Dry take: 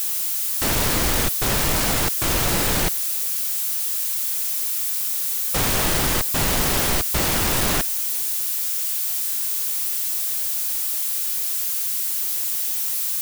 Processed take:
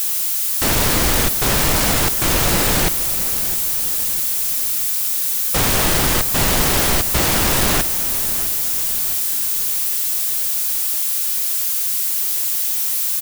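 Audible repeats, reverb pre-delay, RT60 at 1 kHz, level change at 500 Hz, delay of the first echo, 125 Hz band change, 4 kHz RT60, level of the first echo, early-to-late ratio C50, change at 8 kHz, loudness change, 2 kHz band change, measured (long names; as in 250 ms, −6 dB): 4, no reverb audible, no reverb audible, +4.0 dB, 658 ms, +4.0 dB, no reverb audible, −14.0 dB, no reverb audible, +4.0 dB, +4.0 dB, +4.0 dB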